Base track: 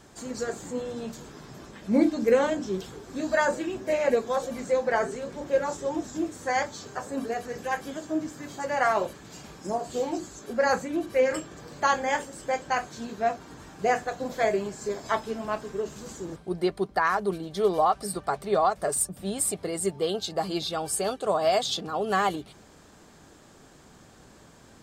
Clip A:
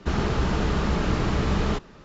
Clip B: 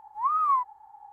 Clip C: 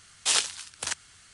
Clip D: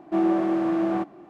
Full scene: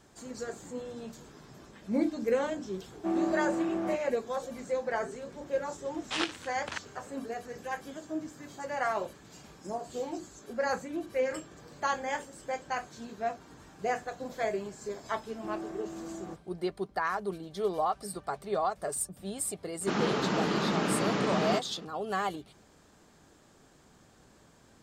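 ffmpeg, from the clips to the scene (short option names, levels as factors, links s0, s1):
-filter_complex "[4:a]asplit=2[s0][s1];[0:a]volume=0.447[s2];[3:a]lowpass=2500[s3];[1:a]highpass=f=170:w=0.5412,highpass=f=170:w=1.3066[s4];[s0]atrim=end=1.29,asetpts=PTS-STARTPTS,volume=0.398,afade=t=in:d=0.004:c=hsin,afade=t=out:st=1.286:d=0.004:c=hsin,adelay=2920[s5];[s3]atrim=end=1.33,asetpts=PTS-STARTPTS,volume=0.891,afade=t=in:d=0.004:c=hsin,afade=t=out:st=1.326:d=0.004:c=hsin,adelay=257985S[s6];[s1]atrim=end=1.29,asetpts=PTS-STARTPTS,volume=0.126,afade=t=in:d=0.004:c=hsin,afade=t=out:st=1.286:d=0.004:c=hsin,adelay=15310[s7];[s4]atrim=end=2.04,asetpts=PTS-STARTPTS,volume=0.794,afade=t=in:d=0.004:c=hsin,afade=t=out:st=2.036:d=0.004:c=hsin,adelay=19810[s8];[s2][s5][s6][s7][s8]amix=inputs=5:normalize=0"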